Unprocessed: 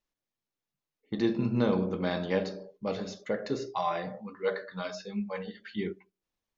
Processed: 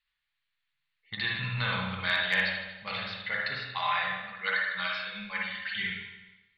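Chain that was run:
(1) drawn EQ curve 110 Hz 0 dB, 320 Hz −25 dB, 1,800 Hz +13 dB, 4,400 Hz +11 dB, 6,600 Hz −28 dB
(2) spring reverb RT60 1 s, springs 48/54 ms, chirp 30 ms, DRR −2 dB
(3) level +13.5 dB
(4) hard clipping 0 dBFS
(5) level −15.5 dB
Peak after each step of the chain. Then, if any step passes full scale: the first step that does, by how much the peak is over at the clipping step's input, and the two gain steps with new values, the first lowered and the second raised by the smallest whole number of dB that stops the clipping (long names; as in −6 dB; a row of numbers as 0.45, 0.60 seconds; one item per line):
−11.0, −10.5, +3.0, 0.0, −15.5 dBFS
step 3, 3.0 dB
step 3 +10.5 dB, step 5 −12.5 dB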